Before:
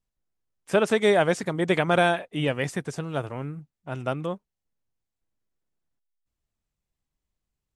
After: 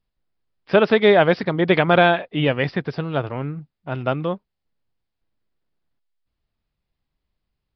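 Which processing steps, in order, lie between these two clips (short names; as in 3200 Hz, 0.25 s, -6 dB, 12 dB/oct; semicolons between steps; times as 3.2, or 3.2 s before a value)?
downsampling 11025 Hz; gain +6 dB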